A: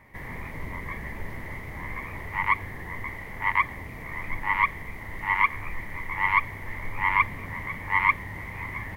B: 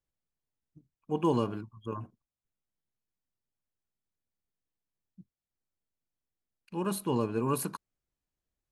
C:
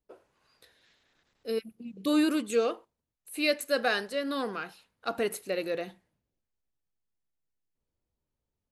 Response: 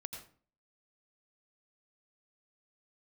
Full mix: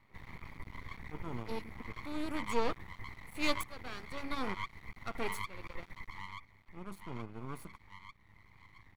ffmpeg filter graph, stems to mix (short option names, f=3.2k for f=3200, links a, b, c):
-filter_complex "[0:a]acompressor=threshold=-25dB:ratio=5,volume=-9.5dB,afade=t=out:st=5.84:d=0.73:silence=0.237137[a];[1:a]volume=-12dB[b];[2:a]aeval=exprs='val(0)*pow(10,-22*if(lt(mod(-1.1*n/s,1),2*abs(-1.1)/1000),1-mod(-1.1*n/s,1)/(2*abs(-1.1)/1000),(mod(-1.1*n/s,1)-2*abs(-1.1)/1000)/(1-2*abs(-1.1)/1000))/20)':c=same,volume=2.5dB[c];[a][b][c]amix=inputs=3:normalize=0,aeval=exprs='max(val(0),0)':c=same,highshelf=f=4.5k:g=-5.5,aecho=1:1:0.9:0.36"